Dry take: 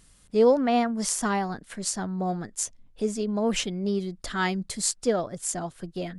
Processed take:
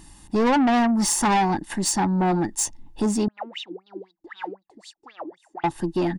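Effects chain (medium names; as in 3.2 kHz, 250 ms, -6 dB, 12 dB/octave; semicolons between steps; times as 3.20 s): comb 1.1 ms, depth 56%; small resonant body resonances 330/850 Hz, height 16 dB, ringing for 45 ms; saturation -23 dBFS, distortion -8 dB; 3.28–5.64 s: wah-wah 3.9 Hz 300–3900 Hz, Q 15; trim +6.5 dB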